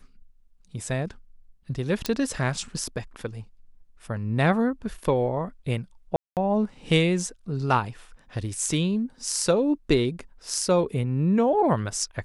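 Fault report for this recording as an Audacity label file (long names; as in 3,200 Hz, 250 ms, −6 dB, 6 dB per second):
2.060000	2.060000	click −10 dBFS
6.160000	6.370000	drop-out 208 ms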